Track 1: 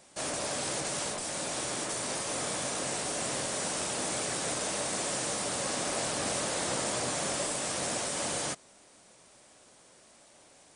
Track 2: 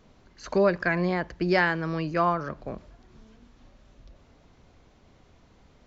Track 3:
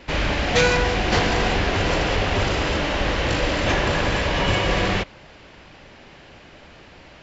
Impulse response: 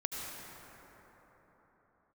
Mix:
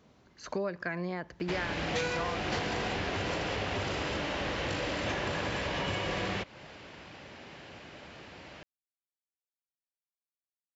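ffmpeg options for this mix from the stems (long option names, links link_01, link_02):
-filter_complex "[1:a]volume=-3dB[link_01];[2:a]adelay=1400,volume=-2.5dB[link_02];[link_01][link_02]amix=inputs=2:normalize=0,highpass=83,acompressor=threshold=-33dB:ratio=3"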